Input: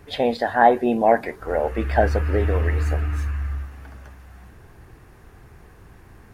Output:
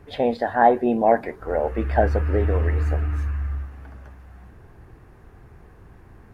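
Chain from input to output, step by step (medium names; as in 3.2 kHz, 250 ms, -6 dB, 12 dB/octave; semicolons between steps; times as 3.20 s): treble shelf 2.3 kHz -10 dB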